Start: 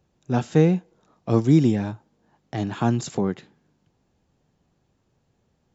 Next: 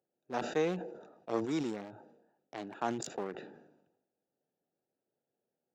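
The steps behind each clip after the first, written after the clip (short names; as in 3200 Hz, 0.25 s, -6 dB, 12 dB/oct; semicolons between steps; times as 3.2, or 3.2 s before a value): Wiener smoothing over 41 samples; HPF 550 Hz 12 dB/oct; sustainer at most 62 dB/s; gain -5.5 dB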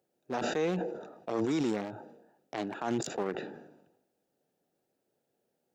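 limiter -30 dBFS, peak gain reduction 11.5 dB; gain +8 dB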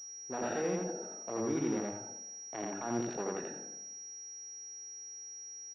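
buzz 400 Hz, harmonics 15, -67 dBFS -1 dB/oct; loudspeakers at several distances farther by 29 m -1 dB, 60 m -12 dB; pulse-width modulation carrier 5700 Hz; gain -5.5 dB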